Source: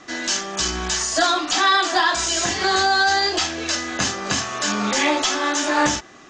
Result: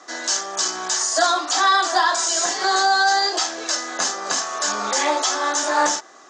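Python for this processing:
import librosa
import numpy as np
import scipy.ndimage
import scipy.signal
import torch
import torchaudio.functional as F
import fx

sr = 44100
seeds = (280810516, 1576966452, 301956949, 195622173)

y = scipy.signal.sosfilt(scipy.signal.butter(2, 570.0, 'highpass', fs=sr, output='sos'), x)
y = fx.peak_eq(y, sr, hz=2600.0, db=-12.5, octaves=1.1)
y = y * librosa.db_to_amplitude(4.0)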